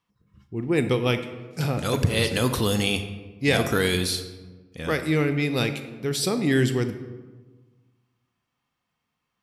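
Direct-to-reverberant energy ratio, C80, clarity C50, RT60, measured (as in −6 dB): 8.5 dB, 12.0 dB, 10.0 dB, 1.3 s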